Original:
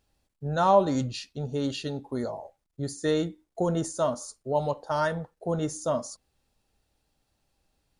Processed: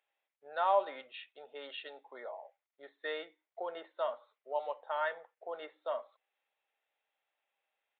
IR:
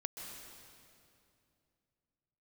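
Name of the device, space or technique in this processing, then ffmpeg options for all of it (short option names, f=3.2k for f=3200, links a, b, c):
musical greeting card: -af "aresample=8000,aresample=44100,highpass=f=540:w=0.5412,highpass=f=540:w=1.3066,equalizer=f=2.1k:t=o:w=0.57:g=8,volume=-7.5dB"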